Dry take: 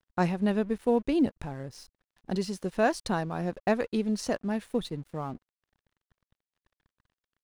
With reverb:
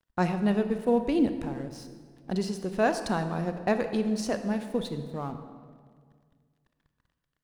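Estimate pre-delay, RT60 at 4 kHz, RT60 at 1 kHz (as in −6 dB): 28 ms, 1.2 s, 1.7 s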